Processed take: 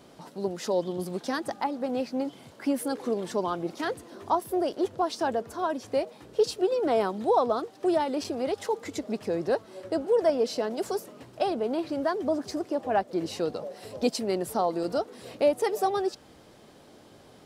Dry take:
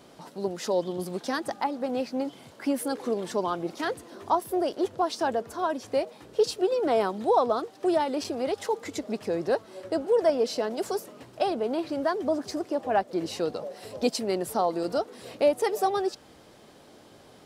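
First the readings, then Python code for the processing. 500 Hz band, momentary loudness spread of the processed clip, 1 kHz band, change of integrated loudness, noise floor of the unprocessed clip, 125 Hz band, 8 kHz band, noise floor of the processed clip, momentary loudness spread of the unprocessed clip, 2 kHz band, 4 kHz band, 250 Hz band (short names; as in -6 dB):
-0.5 dB, 8 LU, -1.0 dB, -0.5 dB, -53 dBFS, +1.0 dB, -1.5 dB, -54 dBFS, 9 LU, -1.5 dB, -1.5 dB, 0.0 dB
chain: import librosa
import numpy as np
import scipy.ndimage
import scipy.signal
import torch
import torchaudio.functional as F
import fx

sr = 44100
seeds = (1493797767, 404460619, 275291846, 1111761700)

y = fx.low_shelf(x, sr, hz=330.0, db=3.0)
y = y * 10.0 ** (-1.5 / 20.0)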